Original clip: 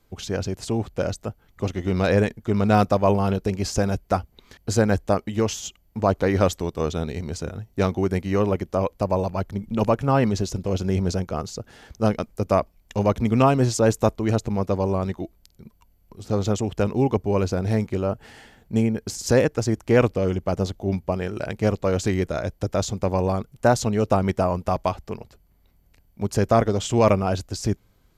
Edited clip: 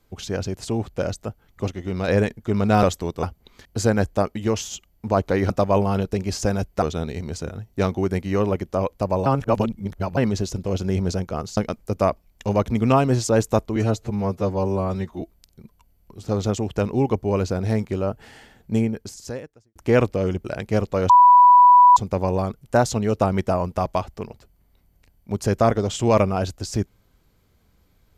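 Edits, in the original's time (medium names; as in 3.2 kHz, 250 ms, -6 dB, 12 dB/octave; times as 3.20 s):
1.70–2.08 s: gain -4 dB
2.83–4.15 s: swap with 6.42–6.82 s
9.26–10.17 s: reverse
11.57–12.07 s: delete
14.26–15.23 s: stretch 1.5×
18.84–19.77 s: fade out quadratic
20.46–21.35 s: delete
22.00–22.87 s: bleep 986 Hz -7.5 dBFS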